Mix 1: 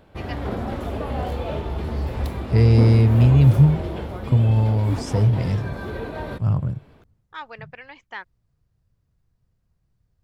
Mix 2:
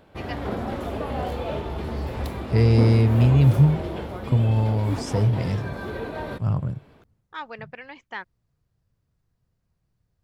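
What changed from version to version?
first voice: remove HPF 460 Hz 6 dB/oct; master: add low shelf 100 Hz -7 dB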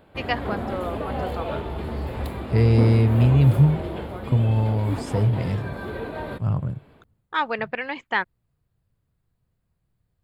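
first voice +11.5 dB; master: add bell 5800 Hz -12 dB 0.37 oct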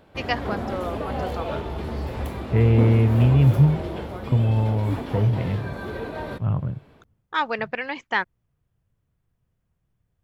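second voice: add brick-wall FIR low-pass 3600 Hz; master: add bell 5800 Hz +12 dB 0.37 oct

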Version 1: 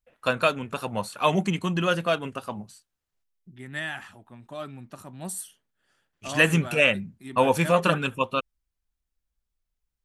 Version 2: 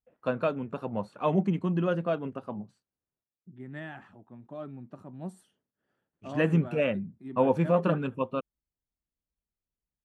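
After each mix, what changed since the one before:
master: add band-pass 260 Hz, Q 0.59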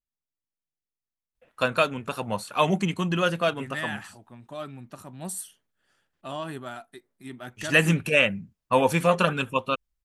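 first voice: entry +1.35 s; master: remove band-pass 260 Hz, Q 0.59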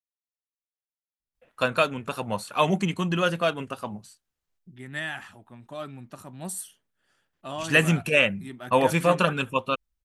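second voice: entry +1.20 s

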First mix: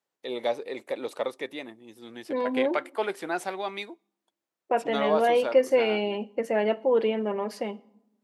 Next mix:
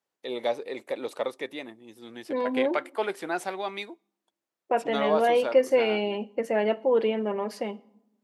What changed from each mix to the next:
none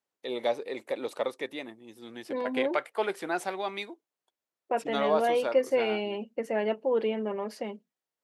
reverb: off

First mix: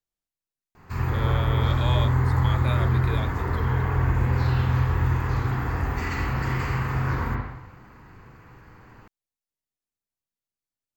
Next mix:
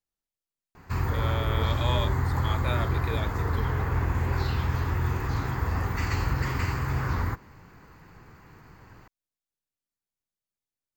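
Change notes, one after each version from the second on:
background +5.0 dB; reverb: off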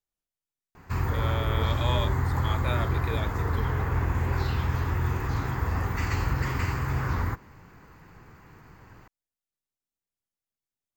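master: add bell 4400 Hz -3 dB 0.29 oct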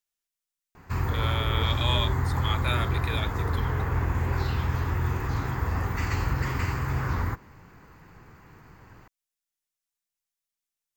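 speech: add tilt shelf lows -8 dB, about 890 Hz

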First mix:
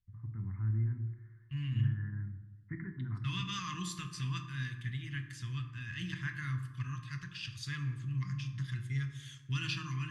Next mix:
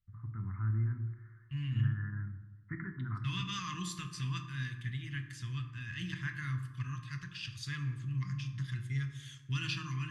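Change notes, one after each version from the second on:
first voice: add bell 1300 Hz +12 dB 0.66 oct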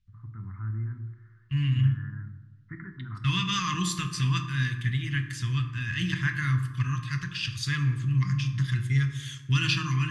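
second voice +11.0 dB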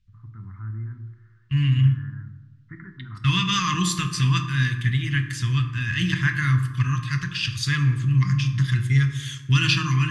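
second voice +5.5 dB

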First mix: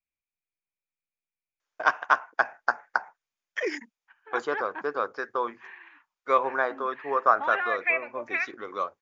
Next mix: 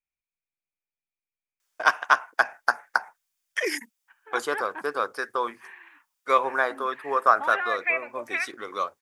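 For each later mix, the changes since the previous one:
first voice: add high shelf 2600 Hz +11.5 dB; master: remove brick-wall FIR low-pass 7300 Hz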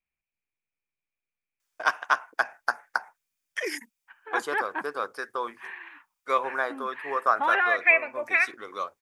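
first voice -4.0 dB; second voice +6.0 dB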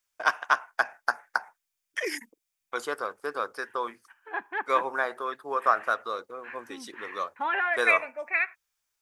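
first voice: entry -1.60 s; second voice -3.5 dB

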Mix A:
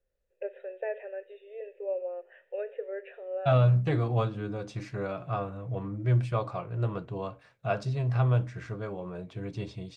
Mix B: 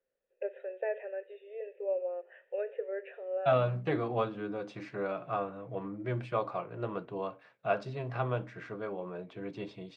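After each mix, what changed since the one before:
master: add three-band isolator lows -23 dB, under 180 Hz, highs -14 dB, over 3900 Hz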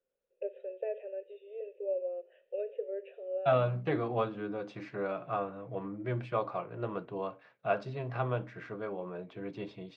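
first voice: add band shelf 1300 Hz -15 dB; master: add air absorption 57 m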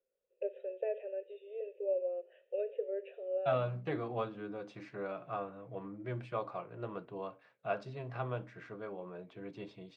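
second voice -5.5 dB; master: remove air absorption 57 m

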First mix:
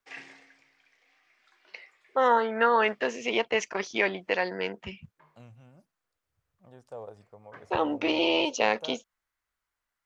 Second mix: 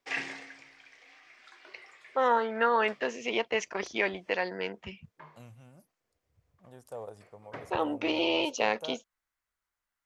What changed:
first voice -3.0 dB; second voice: remove air absorption 89 m; background +10.0 dB

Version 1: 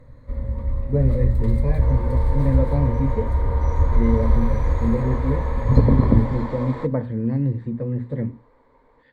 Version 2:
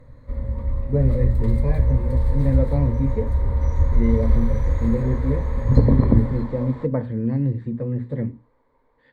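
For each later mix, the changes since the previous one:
second sound -8.0 dB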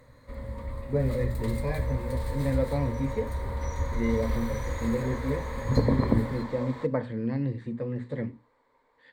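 master: add tilt +3 dB/oct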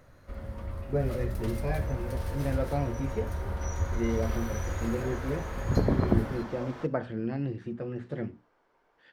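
master: remove ripple EQ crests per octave 1, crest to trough 11 dB

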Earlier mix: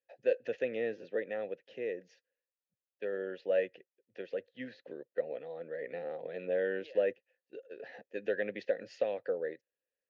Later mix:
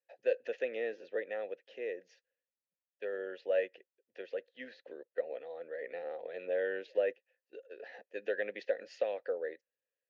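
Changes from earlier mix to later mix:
second voice -10.0 dB; master: add HPF 400 Hz 12 dB/oct

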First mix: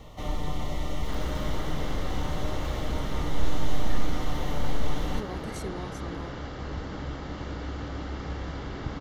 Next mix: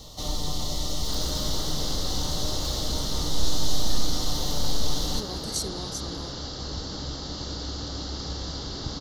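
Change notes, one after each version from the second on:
master: add resonant high shelf 3200 Hz +12 dB, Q 3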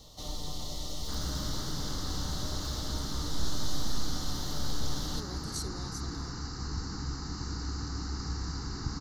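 speech -8.5 dB; first sound -8.5 dB; second sound: add fixed phaser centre 1400 Hz, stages 4

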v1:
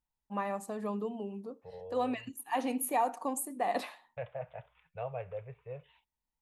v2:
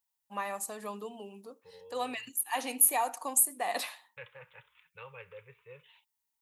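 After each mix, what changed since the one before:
second voice: add Butterworth band-stop 680 Hz, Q 1.6; master: add tilt +4 dB/oct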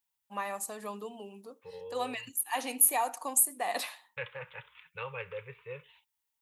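second voice +8.5 dB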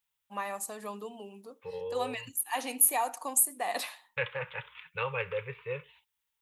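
second voice +6.5 dB

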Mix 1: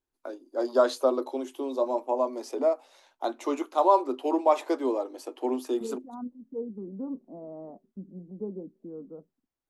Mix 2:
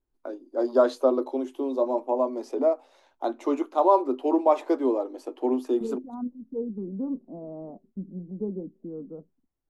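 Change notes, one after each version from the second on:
master: add tilt -2.5 dB/oct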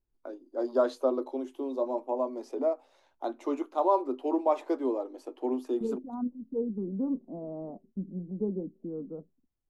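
first voice -5.5 dB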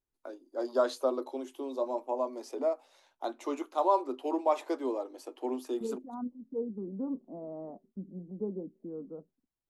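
master: add tilt +2.5 dB/oct

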